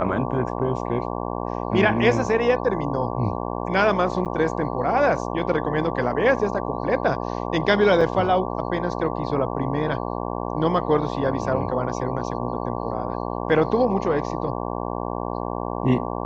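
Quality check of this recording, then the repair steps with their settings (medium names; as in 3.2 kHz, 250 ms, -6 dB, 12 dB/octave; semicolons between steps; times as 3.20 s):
buzz 60 Hz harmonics 19 -28 dBFS
4.25–4.26 s: dropout 8.9 ms
8.01 s: dropout 4.2 ms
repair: de-hum 60 Hz, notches 19; interpolate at 4.25 s, 8.9 ms; interpolate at 8.01 s, 4.2 ms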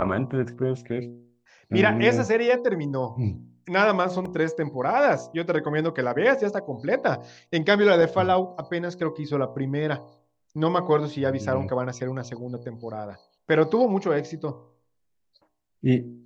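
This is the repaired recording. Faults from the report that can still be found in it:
nothing left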